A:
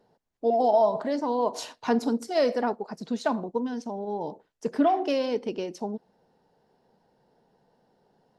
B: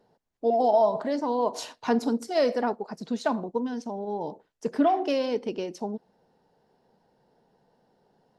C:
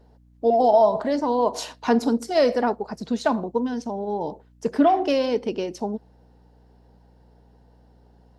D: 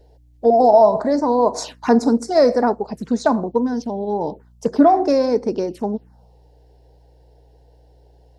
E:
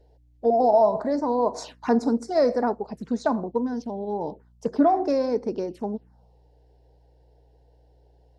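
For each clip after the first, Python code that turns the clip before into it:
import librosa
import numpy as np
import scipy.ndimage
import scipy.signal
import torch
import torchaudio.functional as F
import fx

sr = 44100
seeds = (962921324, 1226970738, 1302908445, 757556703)

y1 = x
y2 = fx.add_hum(y1, sr, base_hz=60, snr_db=31)
y2 = F.gain(torch.from_numpy(y2), 4.5).numpy()
y3 = fx.env_phaser(y2, sr, low_hz=190.0, high_hz=3000.0, full_db=-22.5)
y3 = F.gain(torch.from_numpy(y3), 5.5).numpy()
y4 = fx.high_shelf(y3, sr, hz=6000.0, db=-7.0)
y4 = F.gain(torch.from_numpy(y4), -6.5).numpy()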